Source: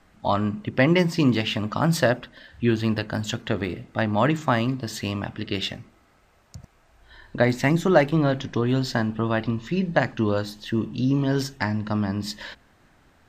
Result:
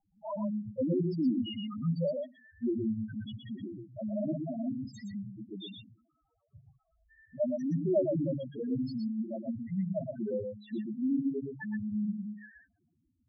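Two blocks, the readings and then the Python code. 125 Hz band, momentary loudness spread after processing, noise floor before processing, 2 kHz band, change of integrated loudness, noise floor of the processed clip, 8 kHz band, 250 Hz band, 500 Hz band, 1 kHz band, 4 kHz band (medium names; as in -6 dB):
-13.0 dB, 13 LU, -59 dBFS, under -25 dB, -10.5 dB, -77 dBFS, under -25 dB, -8.0 dB, -10.0 dB, under -20 dB, -17.5 dB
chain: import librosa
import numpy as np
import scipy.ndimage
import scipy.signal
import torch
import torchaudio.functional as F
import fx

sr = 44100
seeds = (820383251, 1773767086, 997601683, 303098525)

p1 = fx.low_shelf(x, sr, hz=65.0, db=-11.0)
p2 = fx.spec_topn(p1, sr, count=1)
p3 = p2 + fx.echo_single(p2, sr, ms=119, db=-5.0, dry=0)
y = F.gain(torch.from_numpy(p3), -2.0).numpy()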